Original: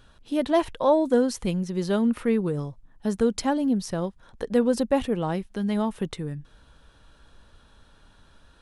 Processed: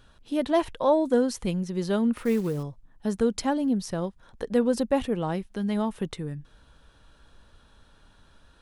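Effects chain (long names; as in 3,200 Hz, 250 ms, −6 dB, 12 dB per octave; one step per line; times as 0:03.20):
0:02.17–0:02.63: log-companded quantiser 6 bits
level −1.5 dB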